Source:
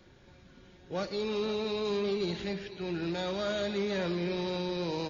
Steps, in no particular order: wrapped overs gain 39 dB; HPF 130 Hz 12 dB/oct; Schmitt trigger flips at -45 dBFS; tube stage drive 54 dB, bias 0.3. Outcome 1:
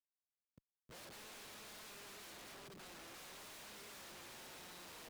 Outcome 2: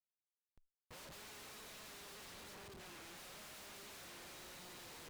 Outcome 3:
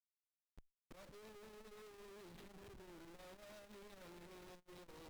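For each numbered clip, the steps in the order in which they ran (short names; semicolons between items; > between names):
wrapped overs > Schmitt trigger > HPF > tube stage; HPF > wrapped overs > Schmitt trigger > tube stage; HPF > Schmitt trigger > wrapped overs > tube stage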